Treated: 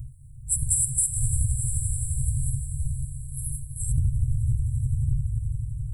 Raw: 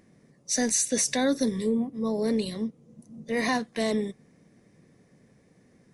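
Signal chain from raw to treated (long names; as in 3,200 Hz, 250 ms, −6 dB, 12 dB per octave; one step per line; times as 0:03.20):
wind on the microphone 160 Hz −29 dBFS
on a send: echo that builds up and dies away 86 ms, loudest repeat 5, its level −17 dB
on the sum: brick-wall band-stop 150–7,500 Hz
high-shelf EQ 6,900 Hz +8.5 dB
downward compressor 6 to 1, threshold −27 dBFS, peak gain reduction 10.5 dB
level +7.5 dB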